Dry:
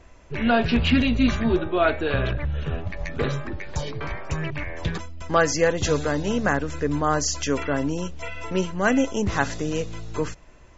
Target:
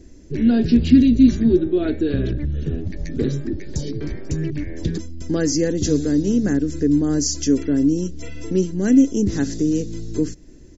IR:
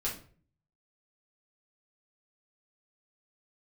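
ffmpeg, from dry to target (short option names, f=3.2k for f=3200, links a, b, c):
-filter_complex "[0:a]firequalizer=gain_entry='entry(110,0);entry(300,10);entry(600,-12);entry(1100,-23);entry(1700,-10);entry(2500,-14);entry(4800,1)':delay=0.05:min_phase=1,asplit=2[a][b];[b]acompressor=threshold=-30dB:ratio=6,volume=-2dB[c];[a][c]amix=inputs=2:normalize=0"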